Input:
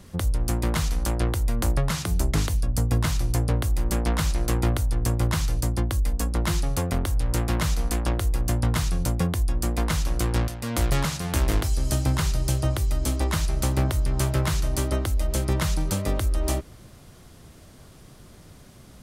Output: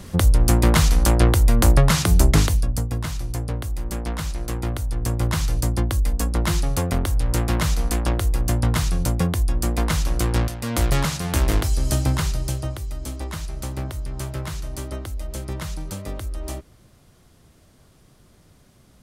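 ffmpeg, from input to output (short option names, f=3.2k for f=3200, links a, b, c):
-af "volume=15dB,afade=t=out:st=2.25:d=0.64:silence=0.251189,afade=t=in:st=4.64:d=0.94:silence=0.473151,afade=t=out:st=12.01:d=0.78:silence=0.354813"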